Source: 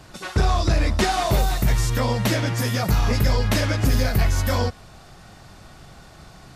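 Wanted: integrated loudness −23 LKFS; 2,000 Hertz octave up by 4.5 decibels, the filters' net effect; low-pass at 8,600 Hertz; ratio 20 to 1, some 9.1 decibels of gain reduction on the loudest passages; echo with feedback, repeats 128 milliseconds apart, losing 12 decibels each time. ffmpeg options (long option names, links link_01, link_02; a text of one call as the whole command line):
ffmpeg -i in.wav -af "lowpass=8600,equalizer=frequency=2000:width_type=o:gain=5.5,acompressor=threshold=-23dB:ratio=20,aecho=1:1:128|256|384:0.251|0.0628|0.0157,volume=5dB" out.wav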